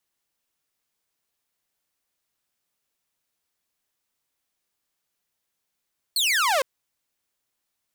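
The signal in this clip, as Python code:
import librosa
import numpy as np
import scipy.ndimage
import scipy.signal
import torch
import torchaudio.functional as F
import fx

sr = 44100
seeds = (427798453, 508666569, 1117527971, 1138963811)

y = fx.laser_zap(sr, level_db=-16.5, start_hz=4500.0, end_hz=500.0, length_s=0.46, wave='saw')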